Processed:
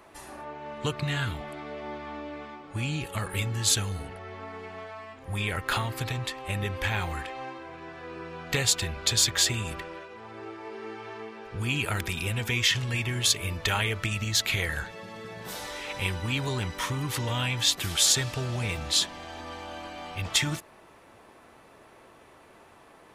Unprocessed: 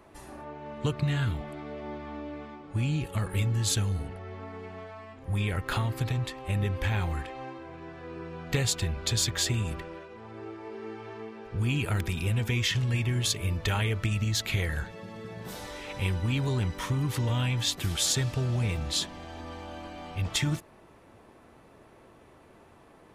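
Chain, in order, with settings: bass shelf 450 Hz -10 dB; trim +5.5 dB

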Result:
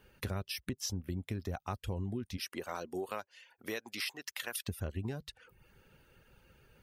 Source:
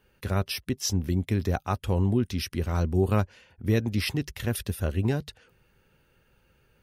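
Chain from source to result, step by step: reverb removal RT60 0.5 s; 2.36–4.67 s: high-pass 390 Hz -> 1 kHz 12 dB/octave; compression 6:1, threshold -38 dBFS, peak gain reduction 16.5 dB; trim +2.5 dB

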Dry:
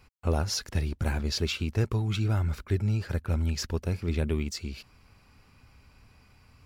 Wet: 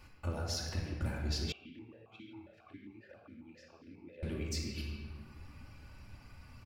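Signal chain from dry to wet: reverb removal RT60 1.1 s; compression 6:1, threshold -39 dBFS, peak gain reduction 16.5 dB; speakerphone echo 140 ms, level -9 dB; simulated room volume 1900 m³, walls mixed, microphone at 2.5 m; 1.52–4.23 s: stepped vowel filter 7.4 Hz

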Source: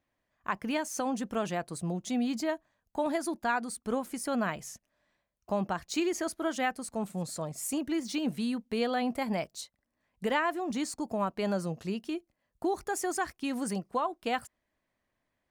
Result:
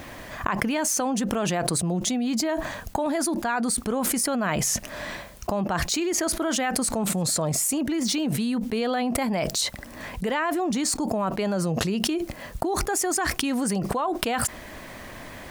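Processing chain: level flattener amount 100%; trim +1 dB

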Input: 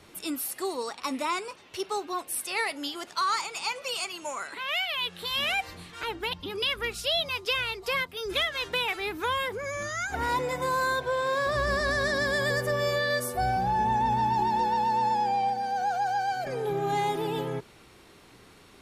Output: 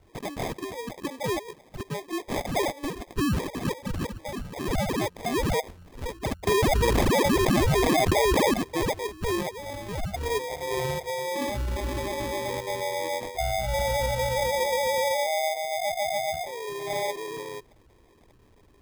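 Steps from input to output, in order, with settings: resonances exaggerated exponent 3; peaking EQ 220 Hz -14.5 dB 2.4 oct; sample-and-hold 31×; 6.47–8.54 s: level flattener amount 100%; trim +4 dB

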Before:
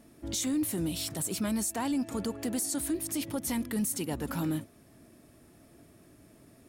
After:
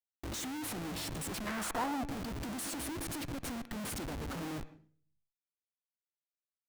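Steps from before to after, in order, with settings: 3.26–3.90 s: compression 6:1, threshold -35 dBFS, peak gain reduction 8.5 dB; Schmitt trigger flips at -38.5 dBFS; 1.46–2.03 s: peaking EQ 1.9 kHz -> 580 Hz +11.5 dB 1.6 oct; on a send: reverberation RT60 0.45 s, pre-delay 115 ms, DRR 16 dB; on the sum: trim -5 dB

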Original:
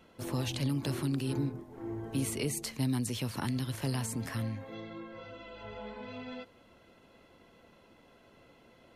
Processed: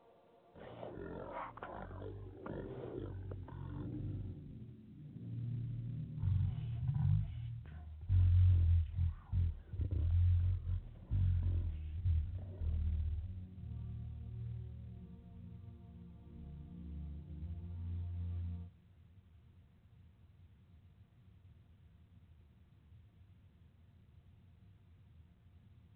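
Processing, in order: band-pass sweep 1.7 kHz -> 260 Hz, 0.40–2.72 s; wide varispeed 0.345×; trim +4 dB; µ-law 64 kbps 8 kHz

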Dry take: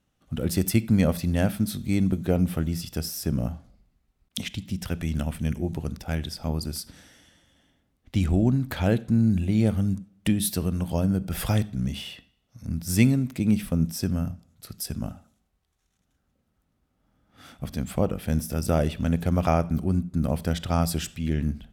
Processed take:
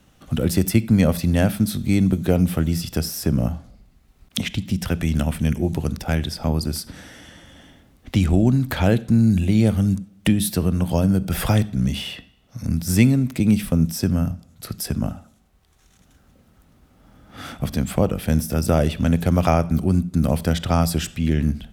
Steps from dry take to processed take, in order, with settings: three bands compressed up and down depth 40%; trim +5.5 dB

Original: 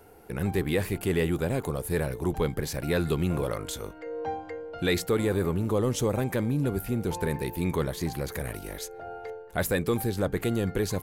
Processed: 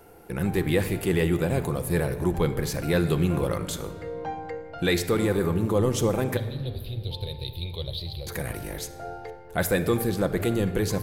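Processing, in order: 6.37–8.27 s: FFT filter 110 Hz 0 dB, 220 Hz -27 dB, 560 Hz -7 dB, 1.6 kHz -28 dB, 3.9 kHz +12 dB, 6.7 kHz -29 dB, 11 kHz -12 dB; reverberation RT60 1.9 s, pre-delay 6 ms, DRR 8.5 dB; trim +2 dB

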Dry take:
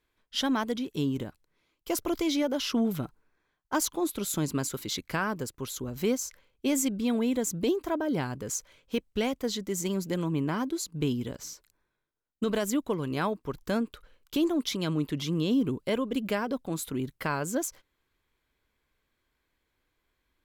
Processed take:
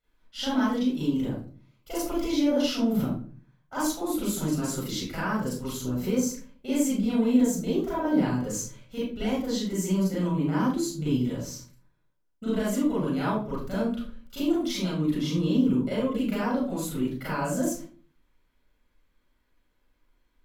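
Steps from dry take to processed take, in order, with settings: peak limiter -22 dBFS, peak gain reduction 4.5 dB; 14.52–14.97 s: compressor with a negative ratio -34 dBFS; reverberation RT60 0.45 s, pre-delay 33 ms, DRR -8.5 dB; trim -9 dB

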